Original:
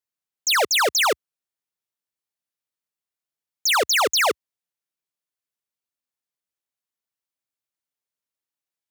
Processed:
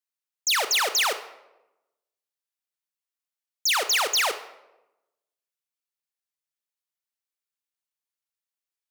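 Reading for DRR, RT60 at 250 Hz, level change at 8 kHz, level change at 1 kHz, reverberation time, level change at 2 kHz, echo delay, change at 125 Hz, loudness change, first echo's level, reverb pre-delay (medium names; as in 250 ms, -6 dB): 10.5 dB, 1.1 s, -2.0 dB, -5.5 dB, 1.0 s, -4.0 dB, no echo, no reading, -3.0 dB, no echo, 24 ms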